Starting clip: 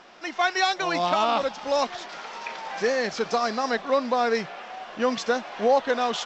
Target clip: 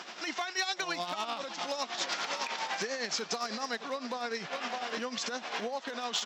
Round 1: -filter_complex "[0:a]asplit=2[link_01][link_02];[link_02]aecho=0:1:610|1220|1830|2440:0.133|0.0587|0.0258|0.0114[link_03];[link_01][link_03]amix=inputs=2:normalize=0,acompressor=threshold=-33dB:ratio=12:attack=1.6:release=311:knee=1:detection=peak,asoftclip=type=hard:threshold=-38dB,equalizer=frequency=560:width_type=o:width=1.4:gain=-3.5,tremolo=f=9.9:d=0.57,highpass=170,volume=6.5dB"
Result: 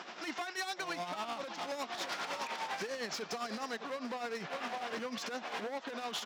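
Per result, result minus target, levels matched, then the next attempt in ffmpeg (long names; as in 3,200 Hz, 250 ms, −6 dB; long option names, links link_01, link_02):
hard clipping: distortion +21 dB; 8,000 Hz band −3.0 dB
-filter_complex "[0:a]asplit=2[link_01][link_02];[link_02]aecho=0:1:610|1220|1830|2440:0.133|0.0587|0.0258|0.0114[link_03];[link_01][link_03]amix=inputs=2:normalize=0,acompressor=threshold=-33dB:ratio=12:attack=1.6:release=311:knee=1:detection=peak,asoftclip=type=hard:threshold=-30.5dB,equalizer=frequency=560:width_type=o:width=1.4:gain=-3.5,tremolo=f=9.9:d=0.57,highpass=170,volume=6.5dB"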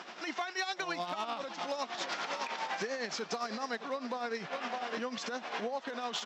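8,000 Hz band −5.0 dB
-filter_complex "[0:a]asplit=2[link_01][link_02];[link_02]aecho=0:1:610|1220|1830|2440:0.133|0.0587|0.0258|0.0114[link_03];[link_01][link_03]amix=inputs=2:normalize=0,acompressor=threshold=-33dB:ratio=12:attack=1.6:release=311:knee=1:detection=peak,asoftclip=type=hard:threshold=-30.5dB,equalizer=frequency=560:width_type=o:width=1.4:gain=-3.5,tremolo=f=9.9:d=0.57,highpass=170,highshelf=frequency=3200:gain=9,volume=6.5dB"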